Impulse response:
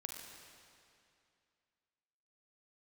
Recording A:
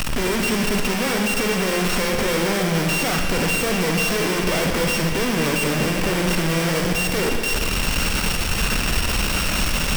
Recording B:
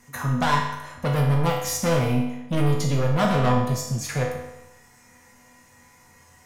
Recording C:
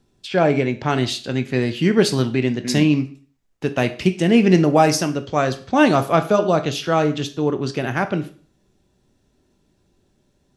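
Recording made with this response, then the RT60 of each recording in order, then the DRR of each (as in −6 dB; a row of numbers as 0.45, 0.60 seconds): A; 2.5, 0.95, 0.45 seconds; 1.5, −2.5, 8.0 decibels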